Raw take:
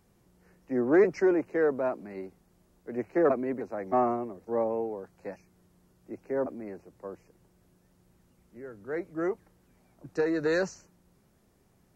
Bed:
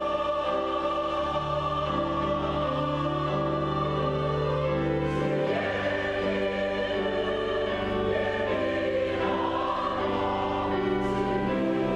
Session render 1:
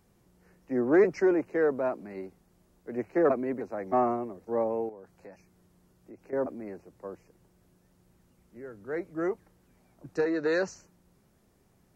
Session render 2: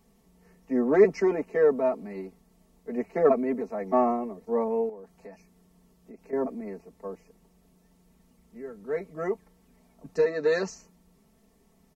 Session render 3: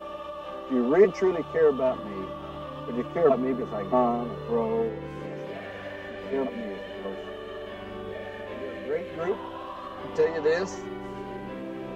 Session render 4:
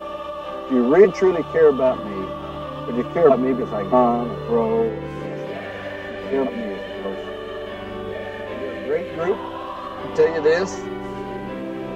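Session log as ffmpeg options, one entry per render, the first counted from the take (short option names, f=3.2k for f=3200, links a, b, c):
-filter_complex "[0:a]asettb=1/sr,asplit=3[a][b][c];[a]atrim=end=4.894[d];[b]atrim=start=4.89:end=6.33,asetpts=PTS-STARTPTS,afade=t=in:d=0.004:c=qsin,afade=t=out:st=1.436:d=0.004:c=qsin,acompressor=threshold=-47dB:ratio=2.5:attack=3.2:release=140:knee=1:detection=peak[e];[c]atrim=start=6.326[f];[d][e]acrossfade=d=0.004:c1=hsin:c2=qsin[g];[g][f]acrossfade=d=0.004:c1=qsin:c2=hsin,asettb=1/sr,asplit=3[h][i][j];[h]atrim=end=10.254[k];[i]atrim=start=10.25:end=10.68,asetpts=PTS-STARTPTS,afade=t=in:d=0.004:c=qsin,afade=t=out:st=0.426:d=0.004:c=qsin,highpass=200,lowpass=5.5k[l];[j]atrim=start=10.676[m];[k][l]acrossfade=d=0.004:c1=hsin:c2=qsin[n];[n][m]acrossfade=d=0.004:c1=qsin:c2=hsin"
-af "equalizer=f=1.5k:t=o:w=0.2:g=-11,aecho=1:1:4.5:0.96"
-filter_complex "[1:a]volume=-10dB[a];[0:a][a]amix=inputs=2:normalize=0"
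-af "volume=7dB,alimiter=limit=-2dB:level=0:latency=1"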